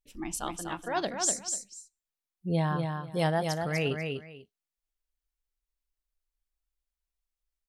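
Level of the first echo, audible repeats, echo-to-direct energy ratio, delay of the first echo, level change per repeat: −5.0 dB, 2, −5.0 dB, 246 ms, −14.0 dB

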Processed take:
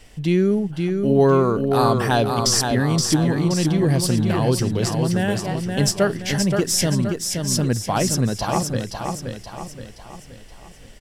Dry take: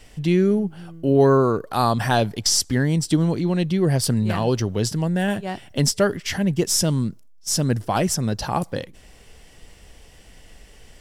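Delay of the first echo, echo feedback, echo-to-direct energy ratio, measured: 524 ms, 46%, −4.0 dB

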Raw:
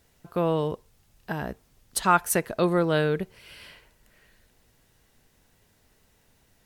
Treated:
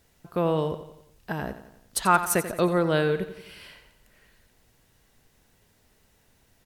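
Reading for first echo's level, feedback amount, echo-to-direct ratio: −12.5 dB, 51%, −11.0 dB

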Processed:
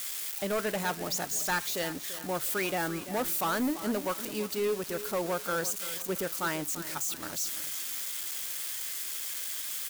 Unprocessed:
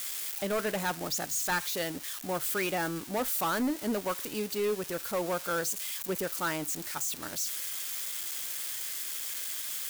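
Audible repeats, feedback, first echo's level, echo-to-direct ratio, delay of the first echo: 3, 42%, −13.5 dB, −12.5 dB, 339 ms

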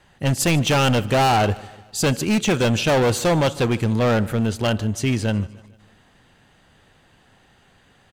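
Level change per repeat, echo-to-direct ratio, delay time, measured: −6.0 dB, −20.0 dB, 150 ms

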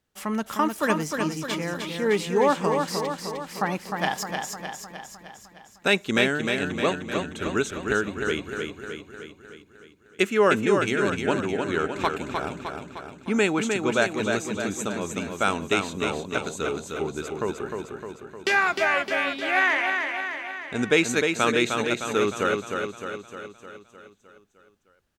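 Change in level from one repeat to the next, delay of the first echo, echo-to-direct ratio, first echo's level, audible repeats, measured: −4.5 dB, 306 ms, −3.0 dB, −5.0 dB, 7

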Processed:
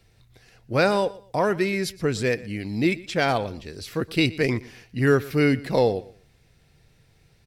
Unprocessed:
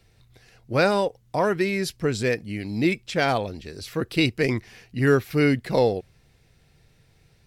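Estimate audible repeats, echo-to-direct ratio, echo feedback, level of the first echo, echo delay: 2, −19.5 dB, 25%, −20.0 dB, 120 ms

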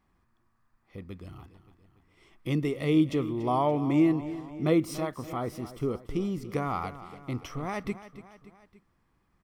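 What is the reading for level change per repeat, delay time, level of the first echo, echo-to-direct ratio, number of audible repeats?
−5.0 dB, 287 ms, −14.5 dB, −13.0 dB, 3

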